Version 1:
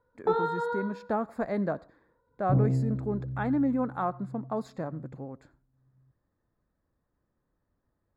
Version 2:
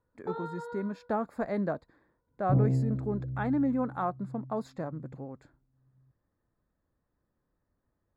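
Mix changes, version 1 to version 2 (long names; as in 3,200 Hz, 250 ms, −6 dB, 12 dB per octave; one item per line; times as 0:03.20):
first sound −7.5 dB
reverb: off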